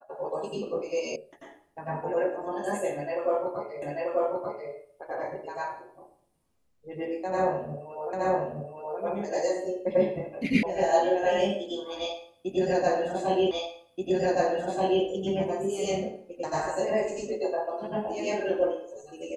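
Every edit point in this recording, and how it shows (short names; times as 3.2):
1.16 sound cut off
3.82 repeat of the last 0.89 s
8.13 repeat of the last 0.87 s
10.63 sound cut off
13.51 repeat of the last 1.53 s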